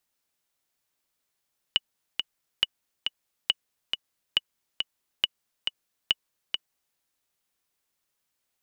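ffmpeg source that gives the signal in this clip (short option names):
-f lavfi -i "aevalsrc='pow(10,(-7.5-5.5*gte(mod(t,2*60/138),60/138))/20)*sin(2*PI*2940*mod(t,60/138))*exp(-6.91*mod(t,60/138)/0.03)':d=5.21:s=44100"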